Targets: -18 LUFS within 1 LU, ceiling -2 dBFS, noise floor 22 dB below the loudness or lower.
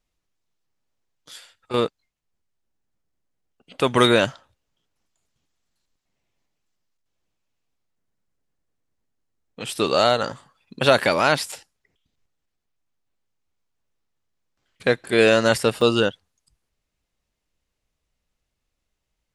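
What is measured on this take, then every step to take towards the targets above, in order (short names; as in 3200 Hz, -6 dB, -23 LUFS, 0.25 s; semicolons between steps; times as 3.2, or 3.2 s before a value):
dropouts 2; longest dropout 3.3 ms; loudness -20.0 LUFS; peak -1.0 dBFS; loudness target -18.0 LUFS
-> interpolate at 11.52/15.81, 3.3 ms; gain +2 dB; limiter -2 dBFS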